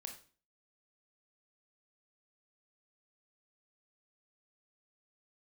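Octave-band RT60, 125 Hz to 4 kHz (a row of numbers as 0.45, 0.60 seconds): 0.45, 0.50, 0.40, 0.40, 0.40, 0.35 seconds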